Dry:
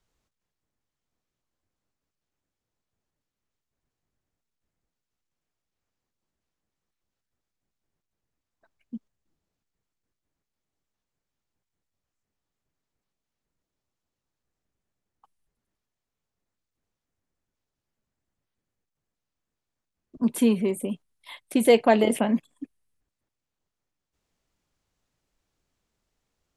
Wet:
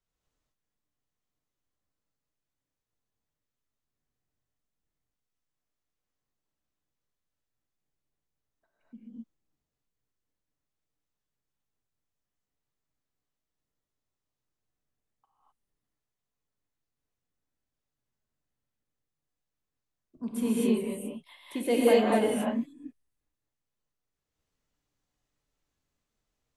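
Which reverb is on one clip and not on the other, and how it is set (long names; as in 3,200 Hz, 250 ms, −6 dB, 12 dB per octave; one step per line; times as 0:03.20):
reverb whose tail is shaped and stops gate 280 ms rising, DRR −7 dB
level −12 dB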